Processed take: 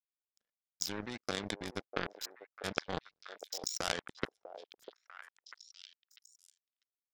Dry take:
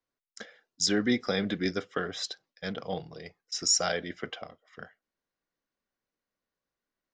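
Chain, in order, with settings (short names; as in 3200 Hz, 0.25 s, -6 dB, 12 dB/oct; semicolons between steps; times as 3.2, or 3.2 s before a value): level quantiser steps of 18 dB; power-law curve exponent 3; delay with a stepping band-pass 0.646 s, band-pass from 570 Hz, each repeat 1.4 oct, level -8 dB; gain +13.5 dB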